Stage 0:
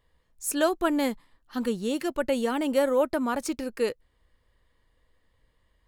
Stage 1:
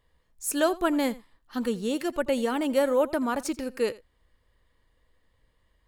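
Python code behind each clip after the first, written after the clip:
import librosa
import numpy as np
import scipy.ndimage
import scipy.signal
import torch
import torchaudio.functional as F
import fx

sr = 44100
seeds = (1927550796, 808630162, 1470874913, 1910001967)

y = x + 10.0 ** (-20.0 / 20.0) * np.pad(x, (int(85 * sr / 1000.0), 0))[:len(x)]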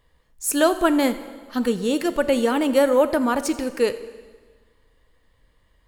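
y = fx.rev_plate(x, sr, seeds[0], rt60_s=1.5, hf_ratio=0.9, predelay_ms=0, drr_db=12.0)
y = F.gain(torch.from_numpy(y), 6.0).numpy()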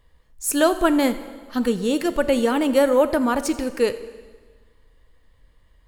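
y = fx.low_shelf(x, sr, hz=90.0, db=7.0)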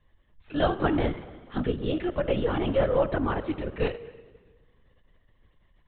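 y = fx.lpc_vocoder(x, sr, seeds[1], excitation='whisper', order=16)
y = F.gain(torch.from_numpy(y), -6.5).numpy()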